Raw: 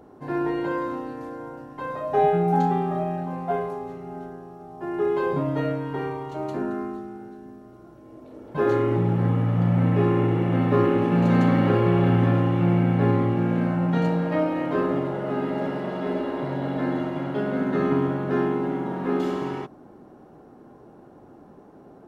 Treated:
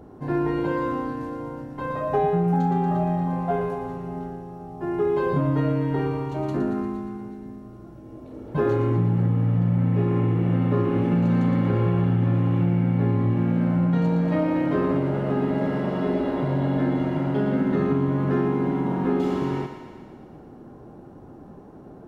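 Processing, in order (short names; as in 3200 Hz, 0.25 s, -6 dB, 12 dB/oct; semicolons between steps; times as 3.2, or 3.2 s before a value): low shelf 210 Hz +11.5 dB; thinning echo 0.117 s, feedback 67%, level -8 dB; compressor, threshold -18 dBFS, peak gain reduction 9.5 dB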